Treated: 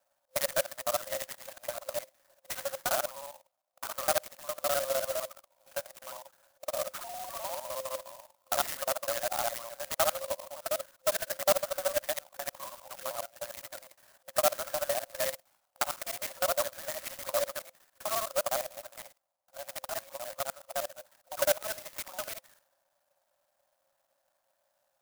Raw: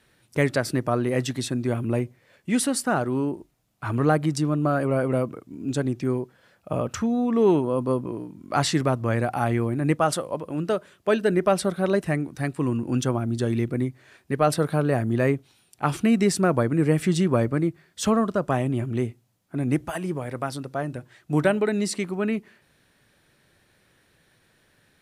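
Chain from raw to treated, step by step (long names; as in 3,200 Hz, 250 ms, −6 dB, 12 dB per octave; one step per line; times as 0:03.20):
reversed piece by piece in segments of 51 ms
low-pass that shuts in the quiet parts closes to 800 Hz, open at −18 dBFS
brick-wall band-pass 520–3,100 Hz
dynamic equaliser 880 Hz, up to −6 dB, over −41 dBFS, Q 2.1
converter with an unsteady clock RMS 0.12 ms
level −1.5 dB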